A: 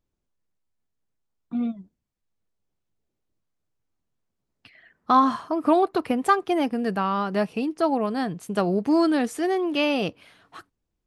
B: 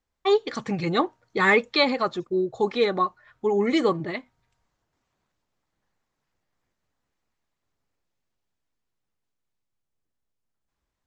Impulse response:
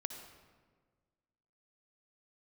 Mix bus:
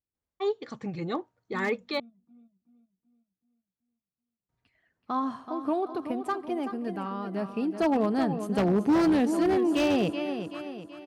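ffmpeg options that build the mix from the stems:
-filter_complex "[0:a]volume=-3.5dB,afade=type=in:start_time=4.6:duration=0.74:silence=0.421697,afade=type=in:start_time=7.4:duration=0.45:silence=0.375837,asplit=3[link_01][link_02][link_03];[link_02]volume=-13.5dB[link_04];[link_03]volume=-8dB[link_05];[1:a]adelay=150,volume=-10dB,asplit=3[link_06][link_07][link_08];[link_06]atrim=end=2,asetpts=PTS-STARTPTS,afade=type=out:start_time=1.996:duration=0.004:curve=hsin[link_09];[link_07]atrim=start=2:end=4.49,asetpts=PTS-STARTPTS,volume=0[link_10];[link_08]atrim=start=4.49,asetpts=PTS-STARTPTS,afade=type=in:duration=0.004:curve=hsin[link_11];[link_09][link_10][link_11]concat=n=3:v=0:a=1[link_12];[2:a]atrim=start_sample=2205[link_13];[link_04][link_13]afir=irnorm=-1:irlink=0[link_14];[link_05]aecho=0:1:379|758|1137|1516|1895|2274|2653:1|0.48|0.23|0.111|0.0531|0.0255|0.0122[link_15];[link_01][link_12][link_14][link_15]amix=inputs=4:normalize=0,aeval=exprs='0.106*(abs(mod(val(0)/0.106+3,4)-2)-1)':channel_layout=same,highpass=52,tiltshelf=frequency=820:gain=3.5"

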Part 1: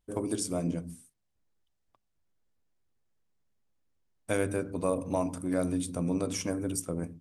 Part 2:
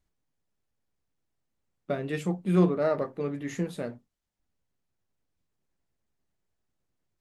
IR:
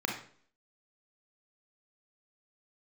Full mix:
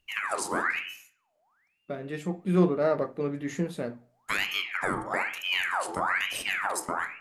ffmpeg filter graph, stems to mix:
-filter_complex "[0:a]alimiter=limit=-19dB:level=0:latency=1:release=385,aeval=exprs='val(0)*sin(2*PI*1700*n/s+1700*0.65/1.1*sin(2*PI*1.1*n/s))':channel_layout=same,volume=2dB,asplit=3[link_01][link_02][link_03];[link_02]volume=-11dB[link_04];[1:a]volume=0dB,asplit=2[link_05][link_06];[link_06]volume=-21.5dB[link_07];[link_03]apad=whole_len=317765[link_08];[link_05][link_08]sidechaincompress=threshold=-50dB:ratio=5:attack=24:release=1230[link_09];[2:a]atrim=start_sample=2205[link_10];[link_04][link_07]amix=inputs=2:normalize=0[link_11];[link_11][link_10]afir=irnorm=-1:irlink=0[link_12];[link_01][link_09][link_12]amix=inputs=3:normalize=0"

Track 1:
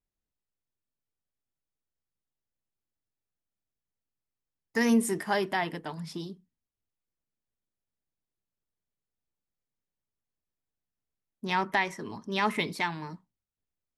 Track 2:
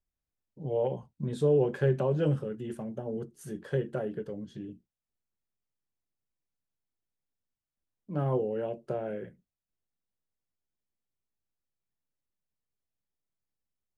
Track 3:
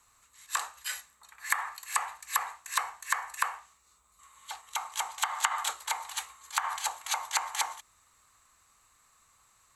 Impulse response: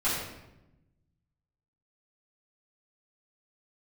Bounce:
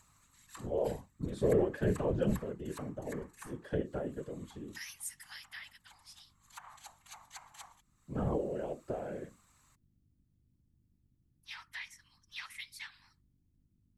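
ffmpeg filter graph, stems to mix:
-filter_complex "[0:a]highpass=frequency=1400:width=0.5412,highpass=frequency=1400:width=1.3066,highshelf=frequency=2900:gain=12,volume=-11.5dB,asplit=2[link_01][link_02];[1:a]volume=1.5dB[link_03];[2:a]acompressor=mode=upward:threshold=-33dB:ratio=2.5,volume=-14.5dB[link_04];[link_02]apad=whole_len=430056[link_05];[link_04][link_05]sidechaincompress=threshold=-54dB:ratio=10:attack=33:release=523[link_06];[link_01][link_03][link_06]amix=inputs=3:normalize=0,aeval=exprs='val(0)+0.000631*(sin(2*PI*50*n/s)+sin(2*PI*2*50*n/s)/2+sin(2*PI*3*50*n/s)/3+sin(2*PI*4*50*n/s)/4+sin(2*PI*5*50*n/s)/5)':channel_layout=same,afftfilt=real='hypot(re,im)*cos(2*PI*random(0))':imag='hypot(re,im)*sin(2*PI*random(1))':win_size=512:overlap=0.75"

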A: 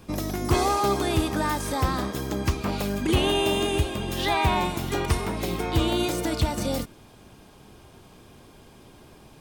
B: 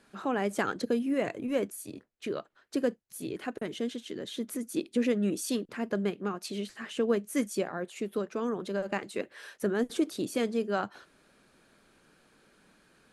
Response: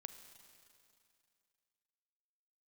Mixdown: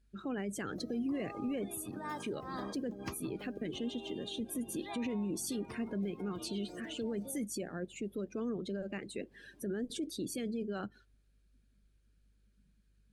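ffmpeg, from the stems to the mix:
-filter_complex "[0:a]highpass=170,acompressor=threshold=-33dB:ratio=3,adelay=600,volume=-5.5dB,asplit=2[link_01][link_02];[link_02]volume=-13dB[link_03];[1:a]equalizer=frequency=910:width=0.75:gain=-13,alimiter=level_in=7dB:limit=-24dB:level=0:latency=1:release=11,volume=-7dB,aeval=exprs='val(0)+0.000631*(sin(2*PI*50*n/s)+sin(2*PI*2*50*n/s)/2+sin(2*PI*3*50*n/s)/3+sin(2*PI*4*50*n/s)/4+sin(2*PI*5*50*n/s)/5)':channel_layout=same,volume=0.5dB,asplit=3[link_04][link_05][link_06];[link_05]volume=-15.5dB[link_07];[link_06]apad=whole_len=441400[link_08];[link_01][link_08]sidechaincompress=threshold=-52dB:ratio=10:attack=16:release=144[link_09];[2:a]atrim=start_sample=2205[link_10];[link_03][link_07]amix=inputs=2:normalize=0[link_11];[link_11][link_10]afir=irnorm=-1:irlink=0[link_12];[link_09][link_04][link_12]amix=inputs=3:normalize=0,afftdn=noise_reduction=18:noise_floor=-48"

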